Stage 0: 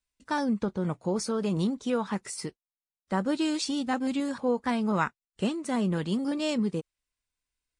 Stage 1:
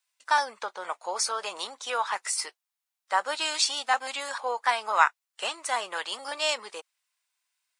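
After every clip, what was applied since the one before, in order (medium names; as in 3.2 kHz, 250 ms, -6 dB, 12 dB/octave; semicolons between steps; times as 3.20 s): high-pass 740 Hz 24 dB/octave; trim +8.5 dB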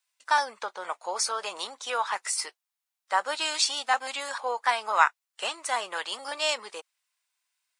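no audible change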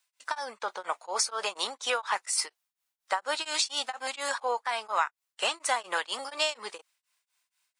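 compression 8:1, threshold -28 dBFS, peak gain reduction 14.5 dB; tremolo of two beating tones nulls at 4.2 Hz; trim +5.5 dB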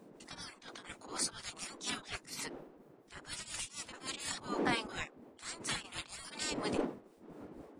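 wind noise 120 Hz -28 dBFS; spectral gate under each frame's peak -15 dB weak; attacks held to a fixed rise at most 180 dB/s; trim -1 dB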